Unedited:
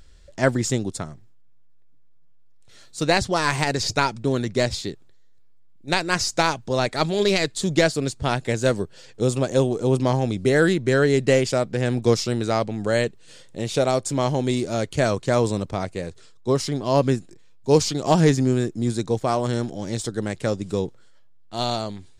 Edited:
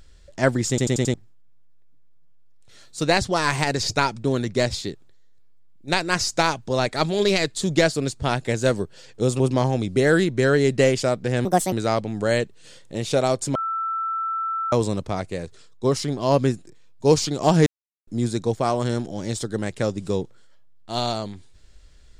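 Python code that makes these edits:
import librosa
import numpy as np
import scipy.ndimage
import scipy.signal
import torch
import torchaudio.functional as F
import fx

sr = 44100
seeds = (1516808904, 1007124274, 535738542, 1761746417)

y = fx.edit(x, sr, fx.stutter_over(start_s=0.69, slice_s=0.09, count=5),
    fx.cut(start_s=9.4, length_s=0.49),
    fx.speed_span(start_s=11.94, length_s=0.42, speed=1.54),
    fx.bleep(start_s=14.19, length_s=1.17, hz=1330.0, db=-23.0),
    fx.silence(start_s=18.3, length_s=0.41), tone=tone)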